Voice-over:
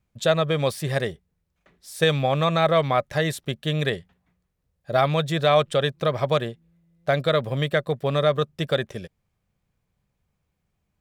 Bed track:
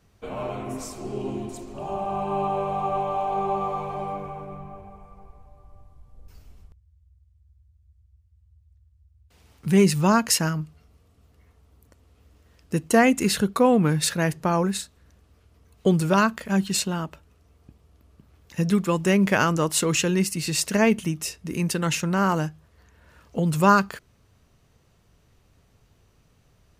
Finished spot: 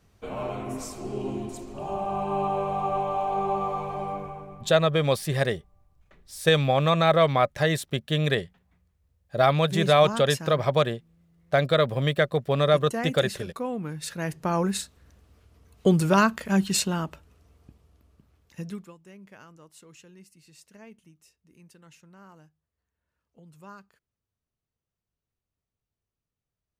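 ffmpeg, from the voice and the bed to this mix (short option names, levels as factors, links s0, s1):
-filter_complex "[0:a]adelay=4450,volume=1[s0];[1:a]volume=3.98,afade=t=out:st=4.19:d=0.62:silence=0.251189,afade=t=in:st=14.01:d=0.84:silence=0.223872,afade=t=out:st=17.43:d=1.52:silence=0.0354813[s1];[s0][s1]amix=inputs=2:normalize=0"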